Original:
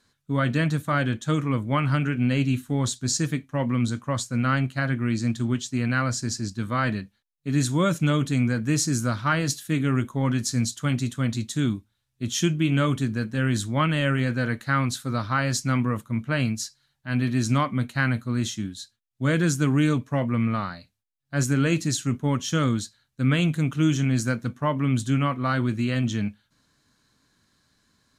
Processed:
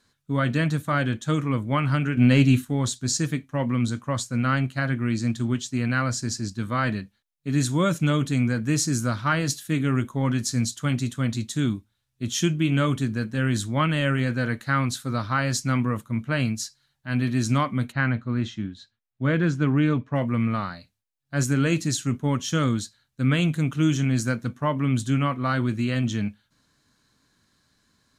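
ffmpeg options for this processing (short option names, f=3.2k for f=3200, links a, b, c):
-filter_complex "[0:a]asettb=1/sr,asplit=3[a][b][c];[a]atrim=end=2.174[d];[b]atrim=start=2.17:end=2.65,asetpts=PTS-STARTPTS,afade=t=in:d=0.004:c=qsin,afade=t=out:st=0.476:d=0.004:c=qsin,acontrast=51[e];[c]atrim=start=2.646[f];[d][e]acrossfade=d=0.004:c1=hsin:c2=qsin[g];[g][f]acrossfade=d=0.004:c1=qsin:c2=hsin,asplit=3[h][i][j];[h]afade=t=out:st=17.91:d=0.02[k];[i]lowpass=2.8k,afade=t=in:st=17.91:d=0.02,afade=t=out:st=20.14:d=0.02[l];[j]afade=t=in:st=20.14:d=0.02[m];[k][l][m]amix=inputs=3:normalize=0"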